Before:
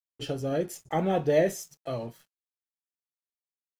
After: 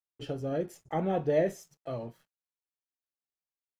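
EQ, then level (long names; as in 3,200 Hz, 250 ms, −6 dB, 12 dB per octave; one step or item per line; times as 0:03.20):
high-shelf EQ 3,000 Hz −10 dB
−3.0 dB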